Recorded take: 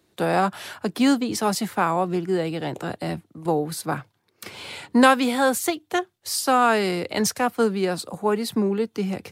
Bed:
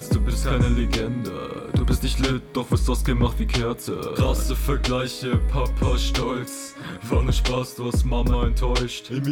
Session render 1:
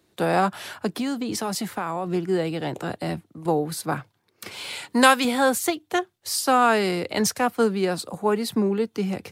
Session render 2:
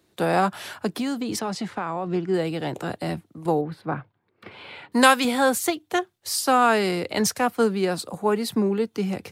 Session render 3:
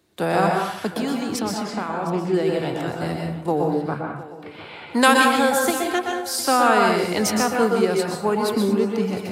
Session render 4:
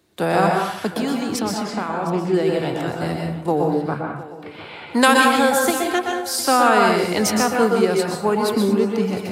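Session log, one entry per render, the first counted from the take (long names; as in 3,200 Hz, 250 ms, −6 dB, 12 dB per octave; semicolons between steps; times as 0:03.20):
0:00.87–0:02.07: downward compressor, threshold −23 dBFS; 0:04.51–0:05.25: spectral tilt +2 dB per octave
0:01.39–0:02.34: high-frequency loss of the air 95 metres; 0:03.61–0:04.92: high-frequency loss of the air 450 metres
feedback echo with a high-pass in the loop 709 ms, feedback 43%, high-pass 160 Hz, level −17 dB; dense smooth reverb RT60 0.65 s, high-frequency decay 0.6×, pre-delay 110 ms, DRR 0.5 dB
level +2 dB; brickwall limiter −3 dBFS, peak gain reduction 2 dB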